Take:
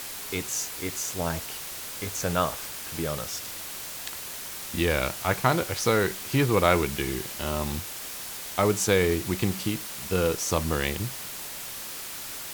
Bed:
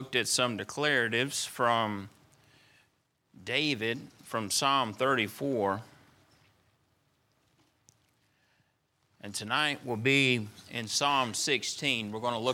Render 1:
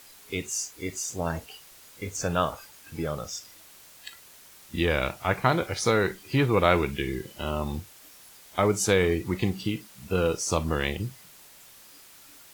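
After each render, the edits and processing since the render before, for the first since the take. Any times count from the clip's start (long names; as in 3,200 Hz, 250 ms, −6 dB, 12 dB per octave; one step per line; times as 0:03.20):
noise reduction from a noise print 14 dB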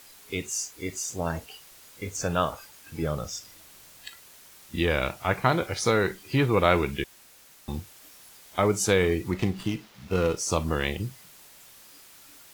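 0:03.02–0:04.08: low-shelf EQ 220 Hz +6 dB
0:07.04–0:07.68: fill with room tone
0:09.31–0:10.37: windowed peak hold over 5 samples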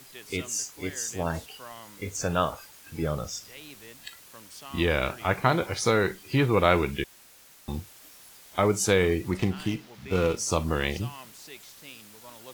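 mix in bed −17.5 dB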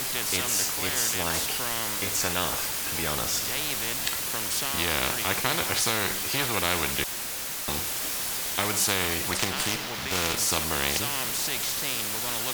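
every bin compressed towards the loudest bin 4 to 1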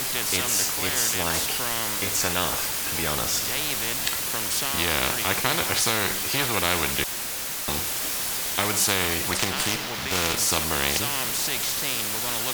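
level +2.5 dB
brickwall limiter −3 dBFS, peak gain reduction 1 dB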